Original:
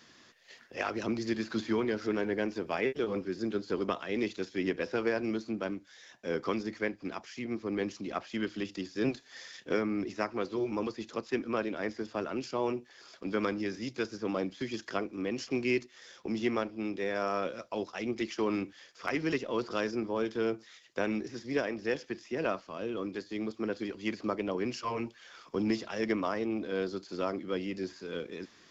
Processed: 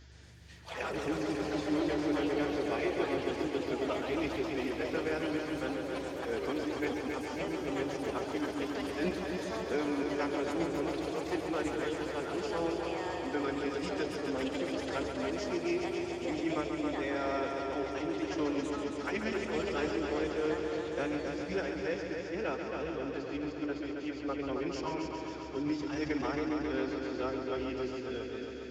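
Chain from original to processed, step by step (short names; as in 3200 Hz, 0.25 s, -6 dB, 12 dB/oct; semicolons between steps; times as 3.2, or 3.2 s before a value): hum 50 Hz, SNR 17 dB; formant-preserving pitch shift +5.5 st; echoes that change speed 0.116 s, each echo +5 st, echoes 3, each echo -6 dB; multi-head echo 0.136 s, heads first and second, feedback 73%, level -8 dB; gain -3.5 dB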